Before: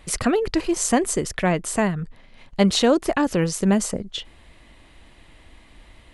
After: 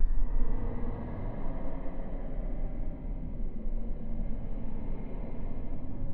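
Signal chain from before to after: level-controlled noise filter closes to 310 Hz, open at -13.5 dBFS; Paulstretch 16×, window 0.10 s, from 2.09 s; gate with hold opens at -48 dBFS; trim +16.5 dB

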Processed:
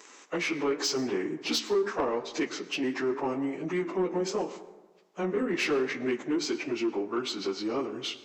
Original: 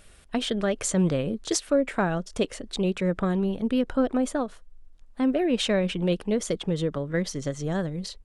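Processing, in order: frequency-domain pitch shifter -6 st; high-pass 290 Hz 24 dB/octave; in parallel at +3 dB: compression, threshold -39 dBFS, peak gain reduction 17 dB; on the sum: flange 0.83 Hz, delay 9.4 ms, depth 8.8 ms, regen -77%; saturation -25.5 dBFS, distortion -16 dB; plate-style reverb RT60 1.3 s, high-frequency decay 0.4×, pre-delay 95 ms, DRR 15 dB; trim +5 dB

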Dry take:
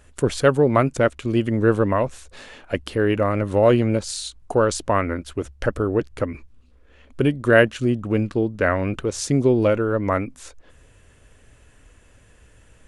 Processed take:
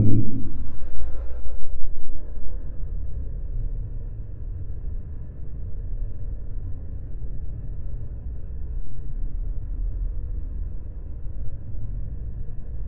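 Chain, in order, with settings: bass shelf 230 Hz +10 dB; Paulstretch 6.2×, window 0.25 s, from 10.29 s; Bessel low-pass 810 Hz, order 2; transient shaper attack -8 dB, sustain 0 dB; tilt EQ -2.5 dB/octave; on a send: reverberation RT60 0.80 s, pre-delay 7 ms, DRR 9 dB; on the sum: trim +3.5 dB

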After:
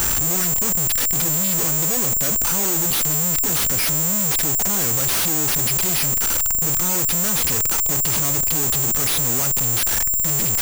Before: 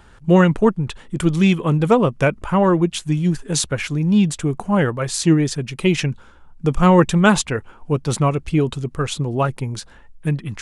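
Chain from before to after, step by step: one-bit comparator; careless resampling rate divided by 6×, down none, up zero stuff; trim -9 dB

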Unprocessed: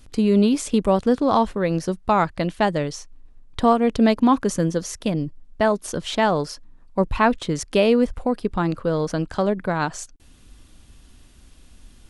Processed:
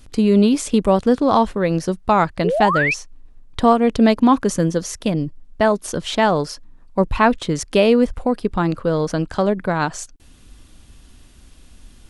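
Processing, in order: painted sound rise, 2.44–2.94 s, 380–2700 Hz -22 dBFS; trim +3 dB

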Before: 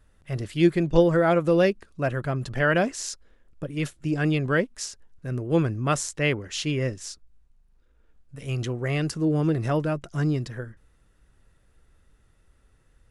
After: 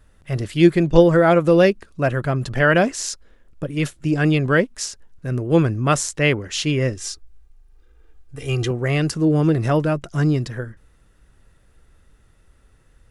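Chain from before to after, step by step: 6.96–8.71 s: comb 2.5 ms, depth 74%; trim +6 dB

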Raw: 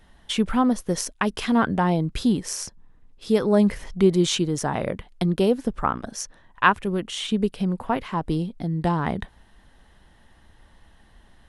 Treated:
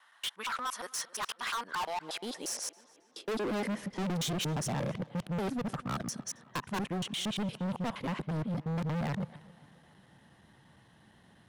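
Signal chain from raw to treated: time reversed locally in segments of 117 ms; high-pass sweep 1.2 kHz -> 140 Hz, 1.59–4.30 s; overload inside the chain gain 27.5 dB; tape echo 270 ms, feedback 60%, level -19 dB, low-pass 4.1 kHz; trim -4 dB

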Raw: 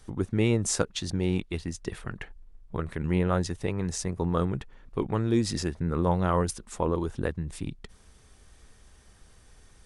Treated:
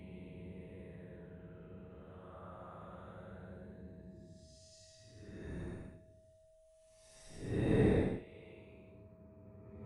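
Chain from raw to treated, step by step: inverted gate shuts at -19 dBFS, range -33 dB; Paulstretch 16×, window 0.05 s, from 3.16 s; whistle 640 Hz -69 dBFS; trim +6 dB

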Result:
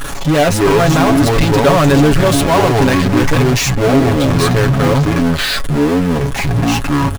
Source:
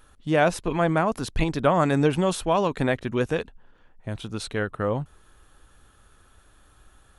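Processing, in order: ever faster or slower copies 85 ms, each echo -7 st, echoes 2; power-law waveshaper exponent 0.35; comb 7.2 ms

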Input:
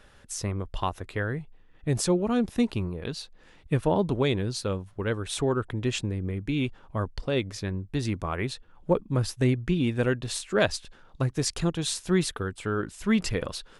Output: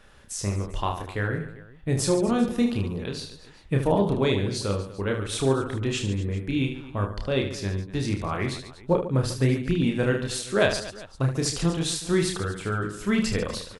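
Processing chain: on a send: reverse bouncing-ball echo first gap 30 ms, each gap 1.5×, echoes 5

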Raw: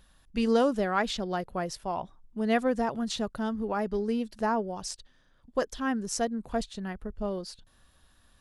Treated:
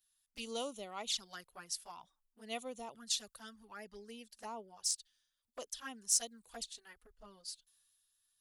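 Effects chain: touch-sensitive flanger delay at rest 11.3 ms, full sweep at -24.5 dBFS; pre-emphasis filter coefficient 0.97; three bands expanded up and down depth 40%; trim +4.5 dB

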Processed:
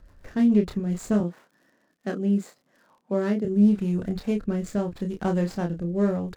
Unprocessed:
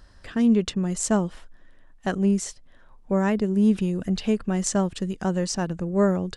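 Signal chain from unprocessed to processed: median filter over 15 samples; 1.20–3.45 s: high-pass 170 Hz 24 dB/octave; crackle 50 per s -50 dBFS; rotary cabinet horn 7 Hz, later 0.8 Hz, at 0.39 s; doubling 29 ms -5 dB; loudspeaker Doppler distortion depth 0.13 ms

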